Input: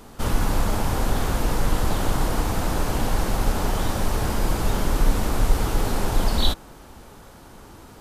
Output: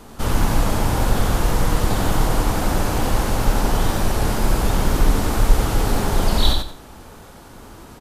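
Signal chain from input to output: feedback echo 91 ms, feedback 25%, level -4.5 dB; wow and flutter 24 cents; gain +2.5 dB

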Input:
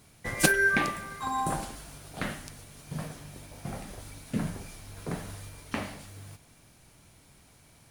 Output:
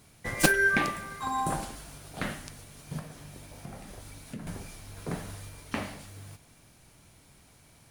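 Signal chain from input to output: tracing distortion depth 0.056 ms; 2.99–4.47 compressor 3:1, threshold -41 dBFS, peak gain reduction 12.5 dB

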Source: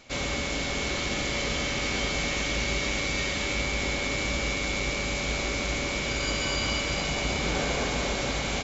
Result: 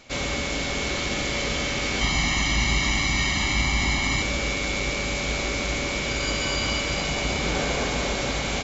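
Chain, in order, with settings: 2.01–4.22 comb 1 ms, depth 89%; gain +2.5 dB

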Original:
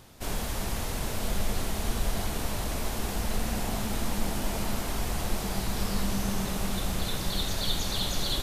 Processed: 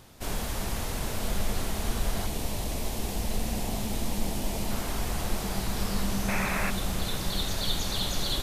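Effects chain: 2.26–4.71 bell 1400 Hz -8 dB 0.82 oct; 6.28–6.71 painted sound noise 470–2700 Hz -32 dBFS

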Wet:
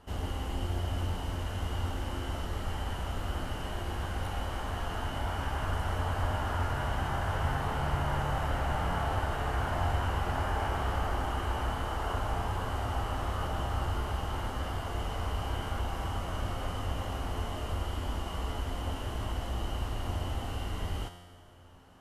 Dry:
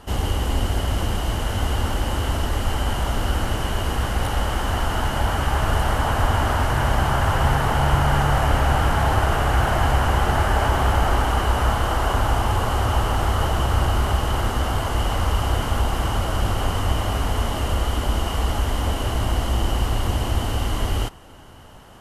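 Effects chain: high shelf 4800 Hz -5 dB; resonator 88 Hz, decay 1.5 s, harmonics all, mix 80%

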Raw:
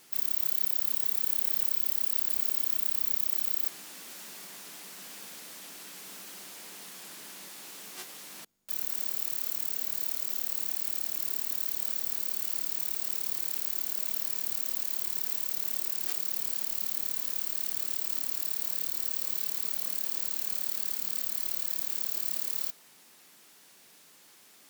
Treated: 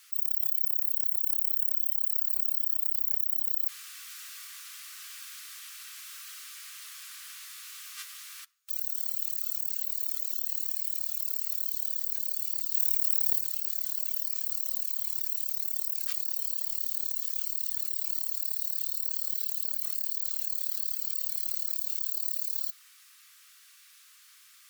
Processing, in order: elliptic high-pass 1200 Hz, stop band 70 dB; spectral gate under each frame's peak -20 dB strong; 12.74–13.4 high shelf 9500 Hz +6 dB; reverb, pre-delay 3 ms, DRR 12 dB; gain +1.5 dB

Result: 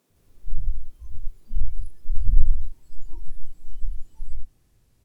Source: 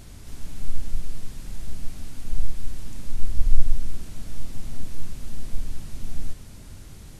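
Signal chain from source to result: speed glide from 166% -> 119%; bands offset in time highs, lows 0.1 s, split 200 Hz; spectral noise reduction 20 dB

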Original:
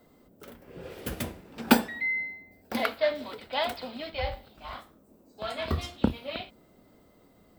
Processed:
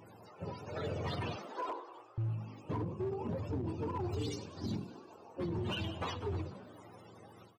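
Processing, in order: spectrum mirrored in octaves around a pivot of 480 Hz; compressor 20:1, threshold -35 dBFS, peak gain reduction 20.5 dB; 1.36–2.18 elliptic high-pass 340 Hz, stop band 40 dB; frequency-shifting echo 97 ms, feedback 65%, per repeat +50 Hz, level -18.5 dB; limiter -36 dBFS, peak gain reduction 10 dB; hard clip -39.5 dBFS, distortion -18 dB; ending taper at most 110 dB/s; gain +8 dB

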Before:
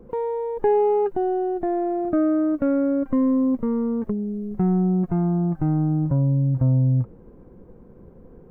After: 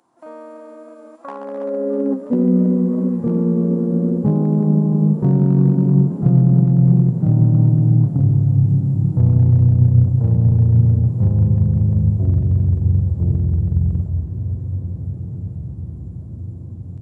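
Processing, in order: tone controls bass +5 dB, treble +8 dB; de-hum 62.72 Hz, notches 7; compressor 5:1, threshold -19 dBFS, peak gain reduction 6.5 dB; harmoniser +4 st -14 dB, +5 st 0 dB; hard clip -11.5 dBFS, distortion -27 dB; high-pass sweep 2000 Hz -> 230 Hz, 0.64–1.46; diffused feedback echo 0.964 s, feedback 45%, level -11.5 dB; speed mistake 15 ips tape played at 7.5 ips; warbling echo 0.326 s, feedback 71%, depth 68 cents, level -13.5 dB

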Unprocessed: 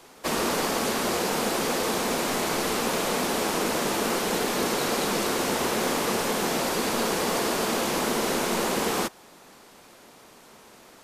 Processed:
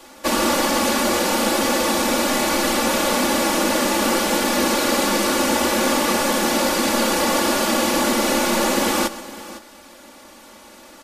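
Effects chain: comb 3.5 ms, depth 96%; on a send: tapped delay 0.129/0.508 s -18/-16.5 dB; on the sum: gain +4 dB

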